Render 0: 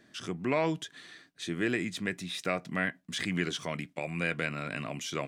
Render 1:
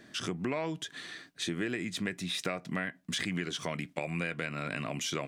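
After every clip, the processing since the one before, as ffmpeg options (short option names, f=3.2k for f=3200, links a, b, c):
-af "acompressor=threshold=-37dB:ratio=5,volume=6dB"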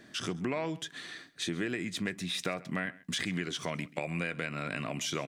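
-af "aecho=1:1:133:0.0891"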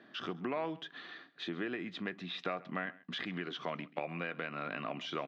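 -af "highpass=210,equalizer=f=770:t=q:w=4:g=4,equalizer=f=1.2k:t=q:w=4:g=5,equalizer=f=2.2k:t=q:w=4:g=-5,lowpass=f=3.6k:w=0.5412,lowpass=f=3.6k:w=1.3066,volume=-3dB"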